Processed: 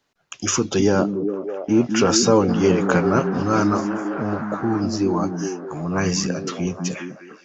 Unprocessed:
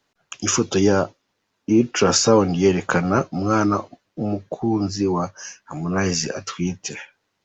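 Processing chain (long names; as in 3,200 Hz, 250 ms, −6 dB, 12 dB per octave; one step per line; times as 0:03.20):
0:02.48–0:04.80: noise in a band 640–1,600 Hz −35 dBFS
echo through a band-pass that steps 203 ms, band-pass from 200 Hz, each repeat 0.7 octaves, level −1.5 dB
level −1 dB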